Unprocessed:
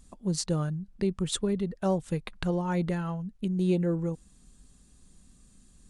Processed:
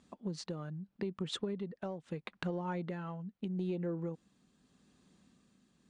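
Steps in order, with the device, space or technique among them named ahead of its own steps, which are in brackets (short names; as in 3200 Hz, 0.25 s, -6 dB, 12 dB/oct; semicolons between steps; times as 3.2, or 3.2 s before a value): AM radio (BPF 180–3700 Hz; compressor 10:1, threshold -32 dBFS, peak gain reduction 10.5 dB; soft clip -21.5 dBFS, distortion -28 dB; tremolo 0.79 Hz, depth 38%)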